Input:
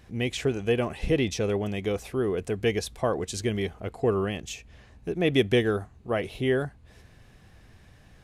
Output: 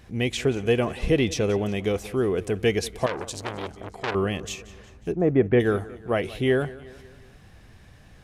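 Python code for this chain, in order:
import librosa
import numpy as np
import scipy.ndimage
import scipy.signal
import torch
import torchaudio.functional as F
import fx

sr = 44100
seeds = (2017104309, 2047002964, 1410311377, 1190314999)

y = fx.lowpass(x, sr, hz=fx.line((5.11, 1100.0), (5.59, 2100.0)), slope=24, at=(5.11, 5.59), fade=0.02)
y = fx.echo_feedback(y, sr, ms=181, feedback_pct=54, wet_db=-19.0)
y = fx.transformer_sat(y, sr, knee_hz=2500.0, at=(3.06, 4.15))
y = F.gain(torch.from_numpy(y), 3.0).numpy()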